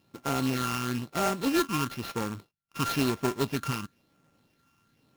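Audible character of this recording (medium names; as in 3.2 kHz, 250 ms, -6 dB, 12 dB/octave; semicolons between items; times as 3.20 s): a buzz of ramps at a fixed pitch in blocks of 32 samples; phasing stages 8, 1 Hz, lowest notch 550–3700 Hz; aliases and images of a low sample rate 8.1 kHz, jitter 20%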